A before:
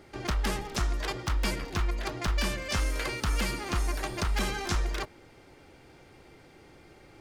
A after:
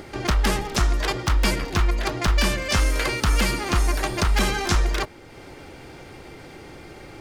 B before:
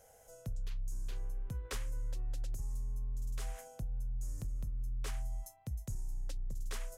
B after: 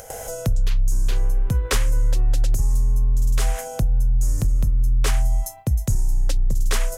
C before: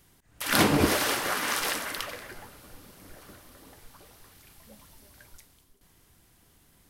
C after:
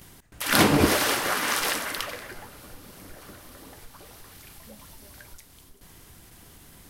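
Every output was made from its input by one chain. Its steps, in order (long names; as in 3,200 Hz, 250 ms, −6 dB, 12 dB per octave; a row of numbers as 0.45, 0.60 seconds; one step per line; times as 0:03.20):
noise gate with hold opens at −51 dBFS
upward compression, threshold −43 dBFS
loudness normalisation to −23 LKFS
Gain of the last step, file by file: +8.5, +19.5, +3.0 decibels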